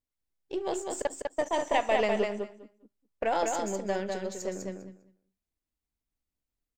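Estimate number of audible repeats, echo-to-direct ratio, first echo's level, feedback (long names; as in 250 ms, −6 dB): 2, −4.0 dB, −4.0 dB, 15%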